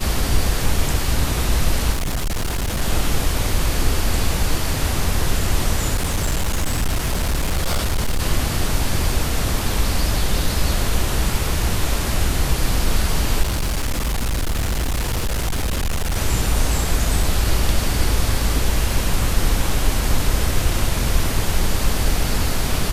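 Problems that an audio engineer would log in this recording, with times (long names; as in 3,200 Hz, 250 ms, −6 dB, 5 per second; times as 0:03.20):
0:01.92–0:02.82: clipping −18.5 dBFS
0:05.94–0:08.20: clipping −15.5 dBFS
0:13.42–0:16.17: clipping −17.5 dBFS
0:17.23: drop-out 3.2 ms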